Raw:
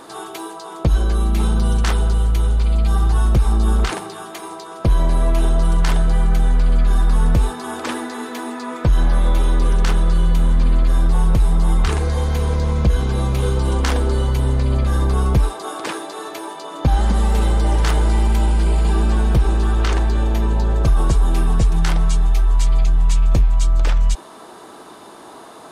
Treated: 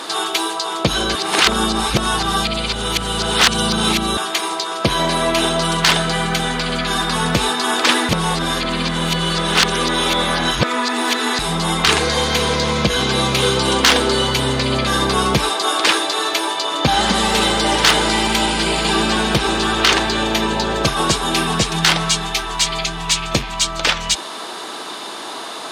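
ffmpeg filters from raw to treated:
-filter_complex "[0:a]asplit=5[a][b][c][d][e];[a]atrim=end=1.152[f];[b]atrim=start=1.148:end=4.172,asetpts=PTS-STARTPTS,areverse[g];[c]atrim=start=4.168:end=8.092[h];[d]atrim=start=8.088:end=11.392,asetpts=PTS-STARTPTS,areverse[i];[e]atrim=start=11.388[j];[f][g]acrossfade=d=0.004:c1=hsin:c2=hsin[k];[k][h]acrossfade=d=0.004:c1=hsin:c2=hsin[l];[l][i]acrossfade=d=0.004:c1=hsin:c2=hsin[m];[m][j]acrossfade=d=0.004:c1=hsin:c2=hsin,highpass=180,equalizer=f=3.7k:w=0.49:g=13.5,acontrast=73,volume=-1dB"

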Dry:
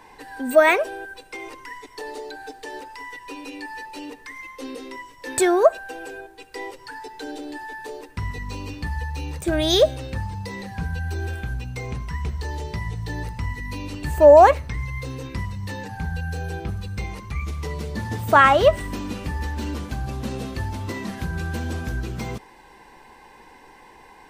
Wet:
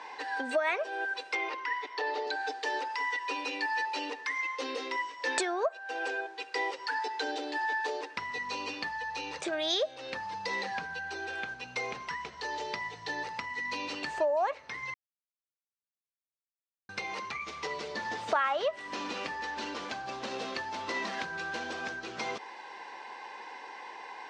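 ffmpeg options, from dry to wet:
-filter_complex "[0:a]asettb=1/sr,asplit=3[a][b][c];[a]atrim=end=1.354[d];[b]atrim=start=1.35:end=2.27,asetpts=PTS-STARTPTS,afade=t=in:d=0.004:c=qsin,afade=t=out:st=0.916:d=0.004:c=qsin,acrossover=split=200 4900:gain=0.251 1 0.1[e][f][g];[e][f][g]amix=inputs=3:normalize=0[h];[c]atrim=start=2.266[i];[d][h]acrossfade=d=0.004:c1=hsin:c2=qsin[j];[j][i]acrossfade=d=0.004:c1=qsin:c2=hsin,asplit=3[k][l][m];[k]atrim=end=14.94,asetpts=PTS-STARTPTS,afade=t=out:st=14.936:d=0.004:c=hsin[n];[l]atrim=start=14.94:end=16.89,asetpts=PTS-STARTPTS,volume=0[o];[m]atrim=start=16.89,asetpts=PTS-STARTPTS,afade=t=in:d=0.004:c=hsin[p];[n][o][p]concat=n=3:v=0:a=1,lowpass=f=5.9k:w=0.5412,lowpass=f=5.9k:w=1.3066,acompressor=threshold=-29dB:ratio=12,highpass=560,volume=5dB"

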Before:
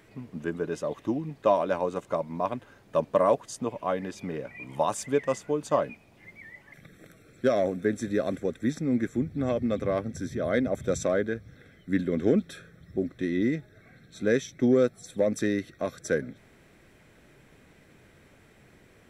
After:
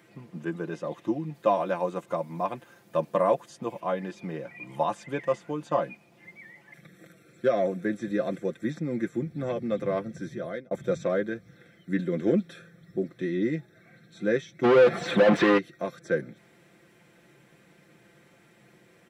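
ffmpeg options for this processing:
-filter_complex "[0:a]asettb=1/sr,asplit=3[a][b][c];[a]atrim=end=1.344[d];[b]atrim=start=1.34:end=3.8,asetpts=PTS-STARTPTS,afade=t=in:d=0.004:c=qsin,afade=t=out:st=2.456:d=0.004:c=qsin,highshelf=f=8.2k:g=11.5[e];[c]atrim=start=3.796[f];[d][e]acrossfade=d=0.004:c1=hsin:c2=qsin[g];[g][f]acrossfade=d=0.004:c1=qsin:c2=hsin,asplit=3[h][i][j];[h]afade=t=out:st=14.63:d=0.02[k];[i]asplit=2[l][m];[m]highpass=f=720:p=1,volume=40dB,asoftclip=type=tanh:threshold=-11.5dB[n];[l][n]amix=inputs=2:normalize=0,lowpass=f=2.1k:p=1,volume=-6dB,afade=t=in:st=14.63:d=0.02,afade=t=out:st=15.57:d=0.02[o];[j]afade=t=in:st=15.57:d=0.02[p];[k][o][p]amix=inputs=3:normalize=0,asplit=2[q][r];[q]atrim=end=10.71,asetpts=PTS-STARTPTS,afade=t=out:st=10.27:d=0.44[s];[r]atrim=start=10.71,asetpts=PTS-STARTPTS,afade=t=in:d=0.004:c=hsin[t];[s][t]concat=n=2:v=0:a=1,acrossover=split=3900[u][v];[v]acompressor=threshold=-57dB:ratio=4:attack=1:release=60[w];[u][w]amix=inputs=2:normalize=0,highpass=120,aecho=1:1:5.8:0.65,volume=-2dB"

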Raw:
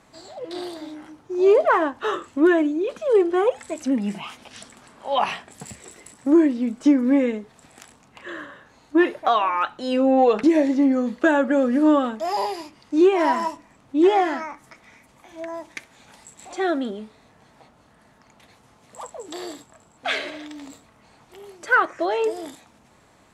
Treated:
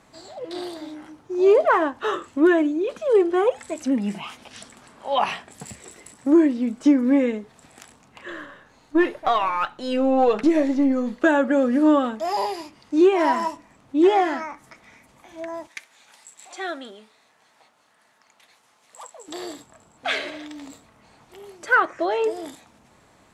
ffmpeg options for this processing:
-filter_complex "[0:a]asettb=1/sr,asplit=3[a][b][c];[a]atrim=end=8.304[d];[b]atrim=start=8.3:end=11.23,asetpts=PTS-STARTPTS,afade=t=in:d=0.004:c=qsin,afade=t=out:st=2.926:d=0.004:c=qsin,aeval=exprs='if(lt(val(0),0),0.708*val(0),val(0))':c=same[e];[c]atrim=start=11.226[f];[d][e]acrossfade=d=0.004:c1=hsin:c2=qsin[g];[g][f]acrossfade=d=0.004:c1=qsin:c2=hsin,asettb=1/sr,asplit=3[h][i][j];[h]atrim=end=15.674[k];[i]atrim=start=15.67:end=19.28,asetpts=PTS-STARTPTS,afade=t=in:d=0.004:c=qsin,afade=t=out:st=3.606:d=0.004:c=qsin,highpass=f=1.3k:p=1[l];[j]atrim=start=19.276[m];[k][l]acrossfade=d=0.004:c1=hsin:c2=qsin[n];[n][m]acrossfade=d=0.004:c1=qsin:c2=hsin,asettb=1/sr,asplit=3[o][p][q];[o]atrim=end=21.804[r];[p]atrim=start=21.8:end=22.45,asetpts=PTS-STARTPTS,afade=t=in:d=0.004:c=qsin,afade=t=out:st=0.646:d=0.004:c=qsin,highshelf=f=5.9k:g=-4[s];[q]atrim=start=22.446[t];[r][s]acrossfade=d=0.004:c1=hsin:c2=qsin[u];[u][t]acrossfade=d=0.004:c1=qsin:c2=hsin"

